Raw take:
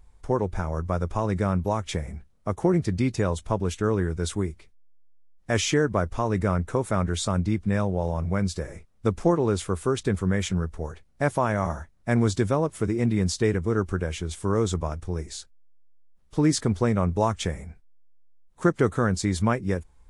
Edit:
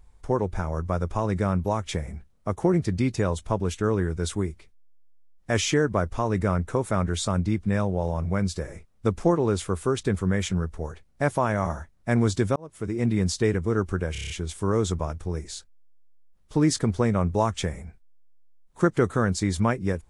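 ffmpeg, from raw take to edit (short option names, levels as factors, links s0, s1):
-filter_complex "[0:a]asplit=8[s0][s1][s2][s3][s4][s5][s6][s7];[s0]atrim=end=12.56,asetpts=PTS-STARTPTS,afade=t=out:st=12.556:d=0.004:c=hsin[s8];[s1]atrim=start=12.56:end=14.152,asetpts=PTS-STARTPTS,afade=t=in:d=0.52[s9];[s2]atrim=start=14.118:end=14.152[s10];[s3]atrim=start=14.118:end=14.152[s11];[s4]atrim=start=14.118:end=14.152[s12];[s5]atrim=start=14.118:end=14.152[s13];[s6]atrim=start=14.118:end=14.152[s14];[s7]atrim=start=14.118[s15];[s8][s9]concat=n=2:v=0:a=1[s16];[s16][s10]acrossfade=d=0.004:c1=hsin:c2=hsin[s17];[s17][s11]acrossfade=d=0.004:c1=hsin:c2=hsin[s18];[s18][s12]acrossfade=d=0.004:c1=hsin:c2=hsin[s19];[s19][s13]acrossfade=d=0.004:c1=hsin:c2=hsin[s20];[s20][s14]acrossfade=d=0.004:c1=hsin:c2=hsin[s21];[s21][s15]acrossfade=d=0.004:c1=hsin:c2=hsin"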